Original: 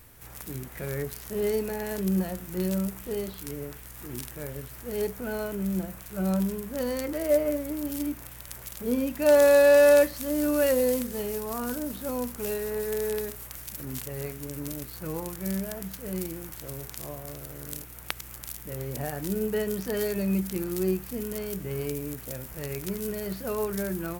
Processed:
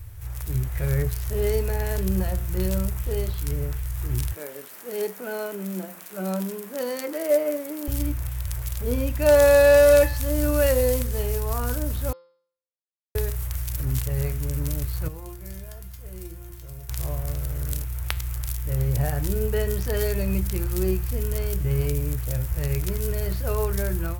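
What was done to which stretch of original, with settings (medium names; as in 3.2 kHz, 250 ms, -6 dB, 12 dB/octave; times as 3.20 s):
4.33–7.88 s: elliptic high-pass 190 Hz
12.13–13.15 s: mute
15.08–16.89 s: feedback comb 350 Hz, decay 0.24 s, mix 80%
whole clip: resonant low shelf 140 Hz +14 dB, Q 3; de-hum 173.1 Hz, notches 30; level rider gain up to 3.5 dB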